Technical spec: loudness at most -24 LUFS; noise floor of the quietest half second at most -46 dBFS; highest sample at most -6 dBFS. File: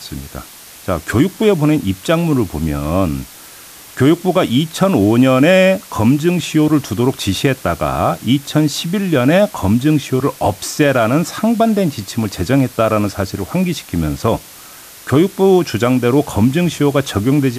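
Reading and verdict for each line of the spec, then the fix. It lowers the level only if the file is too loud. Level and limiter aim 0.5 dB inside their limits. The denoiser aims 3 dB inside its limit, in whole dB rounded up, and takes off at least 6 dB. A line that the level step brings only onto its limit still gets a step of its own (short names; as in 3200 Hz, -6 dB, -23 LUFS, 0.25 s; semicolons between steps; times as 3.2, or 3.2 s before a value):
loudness -15.0 LUFS: fail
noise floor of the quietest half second -38 dBFS: fail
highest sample -1.5 dBFS: fail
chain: gain -9.5 dB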